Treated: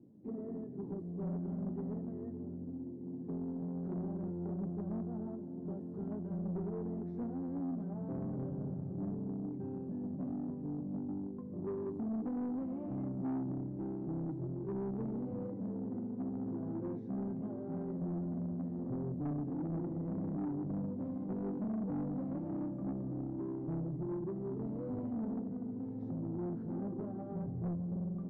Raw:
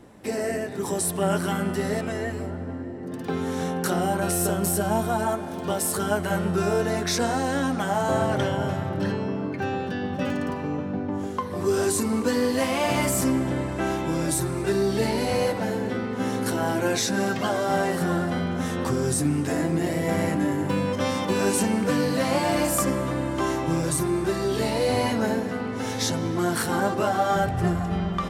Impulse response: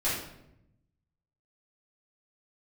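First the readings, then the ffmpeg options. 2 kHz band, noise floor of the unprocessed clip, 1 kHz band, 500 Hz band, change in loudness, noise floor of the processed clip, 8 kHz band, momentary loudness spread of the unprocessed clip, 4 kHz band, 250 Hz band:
below −35 dB, −32 dBFS, −25.5 dB, −19.0 dB, −14.5 dB, −44 dBFS, below −40 dB, 6 LU, below −40 dB, −10.5 dB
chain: -af "asuperpass=centerf=200:order=4:qfactor=0.95,asoftclip=type=tanh:threshold=-26dB,volume=-7dB"

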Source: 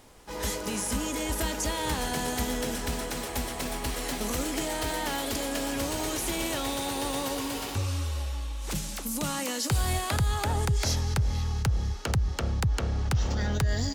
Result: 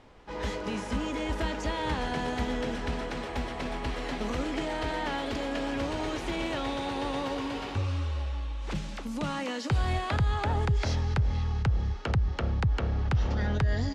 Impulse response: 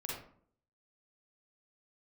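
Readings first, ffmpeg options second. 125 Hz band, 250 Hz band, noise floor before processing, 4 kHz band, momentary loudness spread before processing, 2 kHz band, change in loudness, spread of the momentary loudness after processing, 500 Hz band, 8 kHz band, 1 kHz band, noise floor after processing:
0.0 dB, 0.0 dB, −36 dBFS, −5.0 dB, 5 LU, −0.5 dB, −1.5 dB, 6 LU, 0.0 dB, −16.0 dB, 0.0 dB, −37 dBFS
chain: -af "lowpass=3100"

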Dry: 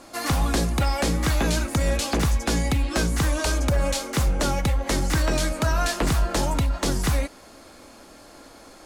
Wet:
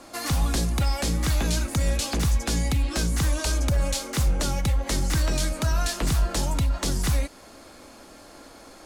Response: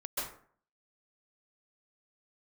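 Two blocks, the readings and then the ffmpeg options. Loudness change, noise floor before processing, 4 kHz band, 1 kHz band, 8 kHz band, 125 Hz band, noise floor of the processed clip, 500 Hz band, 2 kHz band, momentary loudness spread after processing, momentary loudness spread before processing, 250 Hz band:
−1.5 dB, −48 dBFS, −1.0 dB, −5.5 dB, 0.0 dB, −0.5 dB, −48 dBFS, −5.5 dB, −4.5 dB, 1 LU, 2 LU, −3.5 dB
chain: -filter_complex "[0:a]acrossover=split=190|3000[link_01][link_02][link_03];[link_02]acompressor=threshold=-35dB:ratio=2[link_04];[link_01][link_04][link_03]amix=inputs=3:normalize=0"

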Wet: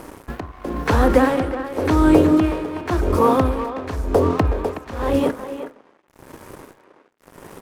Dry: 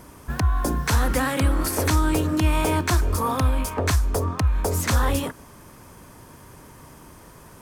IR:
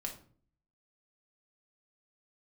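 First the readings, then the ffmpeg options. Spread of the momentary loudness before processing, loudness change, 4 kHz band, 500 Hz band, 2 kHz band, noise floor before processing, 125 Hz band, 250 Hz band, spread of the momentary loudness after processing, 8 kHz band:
3 LU, +4.0 dB, −4.5 dB, +9.0 dB, 0.0 dB, −47 dBFS, −2.0 dB, +8.0 dB, 17 LU, −11.5 dB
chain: -filter_complex "[0:a]acrossover=split=3900[link_01][link_02];[link_02]acompressor=threshold=-41dB:ratio=4:attack=1:release=60[link_03];[link_01][link_03]amix=inputs=2:normalize=0,equalizer=frequency=420:width_type=o:width=2.2:gain=13,bandreject=frequency=72.36:width_type=h:width=4,bandreject=frequency=144.72:width_type=h:width=4,bandreject=frequency=217.08:width_type=h:width=4,bandreject=frequency=289.44:width_type=h:width=4,bandreject=frequency=361.8:width_type=h:width=4,bandreject=frequency=434.16:width_type=h:width=4,bandreject=frequency=506.52:width_type=h:width=4,bandreject=frequency=578.88:width_type=h:width=4,bandreject=frequency=651.24:width_type=h:width=4,asplit=2[link_04][link_05];[link_05]acompressor=threshold=-27dB:ratio=6,volume=0.5dB[link_06];[link_04][link_06]amix=inputs=2:normalize=0,tremolo=f=0.93:d=0.86,aeval=exprs='sgn(val(0))*max(abs(val(0))-0.0178,0)':channel_layout=same,asplit=2[link_07][link_08];[link_08]adelay=370,highpass=300,lowpass=3400,asoftclip=type=hard:threshold=-11dB,volume=-10dB[link_09];[link_07][link_09]amix=inputs=2:normalize=0,asplit=2[link_10][link_11];[1:a]atrim=start_sample=2205,asetrate=48510,aresample=44100[link_12];[link_11][link_12]afir=irnorm=-1:irlink=0,volume=-11.5dB[link_13];[link_10][link_13]amix=inputs=2:normalize=0,volume=-1dB"

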